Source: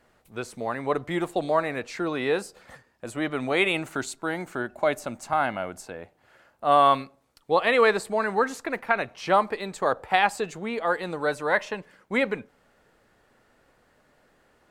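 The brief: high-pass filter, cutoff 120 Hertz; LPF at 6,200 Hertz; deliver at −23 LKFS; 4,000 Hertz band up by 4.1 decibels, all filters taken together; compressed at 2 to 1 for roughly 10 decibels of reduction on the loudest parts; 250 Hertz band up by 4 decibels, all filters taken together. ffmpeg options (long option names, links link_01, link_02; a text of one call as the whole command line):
ffmpeg -i in.wav -af "highpass=120,lowpass=6200,equalizer=frequency=250:width_type=o:gain=5.5,equalizer=frequency=4000:width_type=o:gain=5.5,acompressor=threshold=-32dB:ratio=2,volume=9.5dB" out.wav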